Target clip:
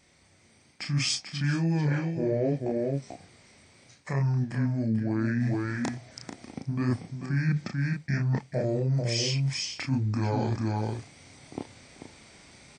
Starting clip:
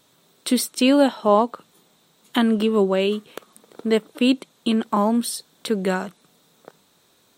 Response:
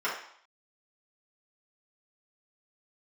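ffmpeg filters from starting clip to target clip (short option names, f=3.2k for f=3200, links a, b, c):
-af "lowshelf=f=210:g=5,aecho=1:1:254:0.299,flanger=delay=16.5:depth=4.7:speed=1.2,dynaudnorm=f=460:g=3:m=10dB,asetrate=25442,aresample=44100,equalizer=f=5.9k:w=3.4:g=5.5,areverse,acompressor=threshold=-25dB:ratio=6,areverse"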